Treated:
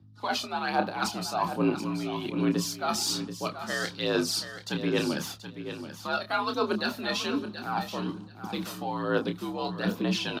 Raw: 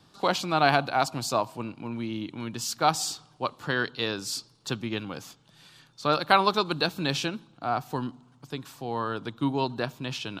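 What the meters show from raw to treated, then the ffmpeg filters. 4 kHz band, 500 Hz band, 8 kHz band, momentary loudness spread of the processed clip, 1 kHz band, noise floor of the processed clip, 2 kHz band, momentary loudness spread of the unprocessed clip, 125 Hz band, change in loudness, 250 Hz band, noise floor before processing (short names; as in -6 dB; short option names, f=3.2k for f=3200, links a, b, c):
-1.0 dB, -1.0 dB, 0.0 dB, 8 LU, -4.5 dB, -47 dBFS, -2.5 dB, 13 LU, -1.0 dB, -2.0 dB, +2.5 dB, -60 dBFS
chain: -filter_complex "[0:a]equalizer=f=7.6k:t=o:w=0.29:g=-6.5,agate=range=-27dB:threshold=-50dB:ratio=16:detection=peak,areverse,acompressor=threshold=-37dB:ratio=5,areverse,aeval=exprs='val(0)+0.000355*(sin(2*PI*50*n/s)+sin(2*PI*2*50*n/s)/2+sin(2*PI*3*50*n/s)/3+sin(2*PI*4*50*n/s)/4+sin(2*PI*5*50*n/s)/5)':c=same,aphaser=in_gain=1:out_gain=1:delay=1.7:decay=0.55:speed=1.2:type=sinusoidal,afreqshift=57,asplit=2[a][b];[b]adelay=28,volume=-7dB[c];[a][c]amix=inputs=2:normalize=0,asplit=2[d][e];[e]aecho=0:1:730|1460:0.299|0.0478[f];[d][f]amix=inputs=2:normalize=0,volume=7.5dB" -ar 48000 -c:a libvorbis -b:a 96k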